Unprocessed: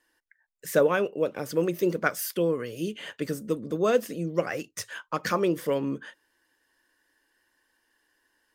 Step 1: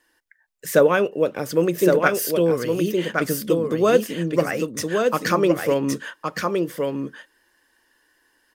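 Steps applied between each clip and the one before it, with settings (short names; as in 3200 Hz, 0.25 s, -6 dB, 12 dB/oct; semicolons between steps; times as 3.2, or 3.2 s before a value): echo 1.116 s -4 dB; gain +6 dB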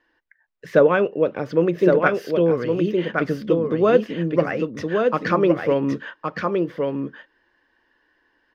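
air absorption 280 m; gain +1.5 dB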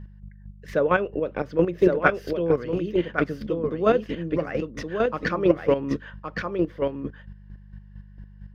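buzz 50 Hz, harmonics 4, -39 dBFS -5 dB/oct; chopper 4.4 Hz, depth 60%, duty 25%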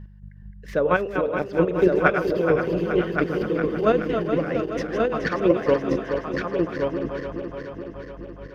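regenerating reverse delay 0.212 s, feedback 81%, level -7.5 dB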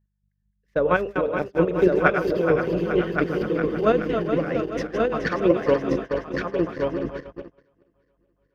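gate -28 dBFS, range -30 dB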